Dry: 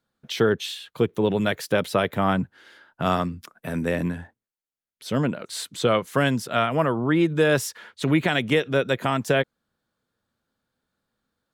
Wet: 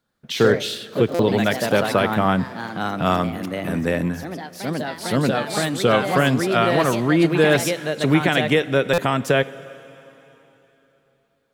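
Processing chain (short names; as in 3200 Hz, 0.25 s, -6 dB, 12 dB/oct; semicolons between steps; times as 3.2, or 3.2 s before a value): plate-style reverb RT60 3.5 s, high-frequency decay 0.95×, DRR 16.5 dB; echoes that change speed 82 ms, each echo +2 st, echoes 3, each echo -6 dB; stuck buffer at 1.14/8.93, samples 256, times 8; gain +3 dB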